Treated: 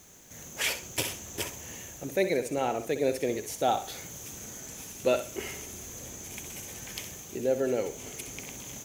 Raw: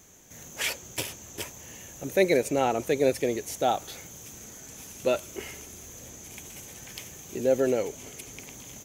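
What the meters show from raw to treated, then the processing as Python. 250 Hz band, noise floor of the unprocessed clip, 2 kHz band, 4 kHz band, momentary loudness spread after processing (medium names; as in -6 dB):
-3.5 dB, -47 dBFS, -1.5 dB, 0.0 dB, 12 LU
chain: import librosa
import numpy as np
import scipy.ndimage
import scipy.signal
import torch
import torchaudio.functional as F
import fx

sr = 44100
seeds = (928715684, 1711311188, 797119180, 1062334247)

y = fx.rider(x, sr, range_db=4, speed_s=0.5)
y = fx.quant_dither(y, sr, seeds[0], bits=10, dither='triangular')
y = fx.room_flutter(y, sr, wall_m=10.9, rt60_s=0.36)
y = y * librosa.db_to_amplitude(-2.0)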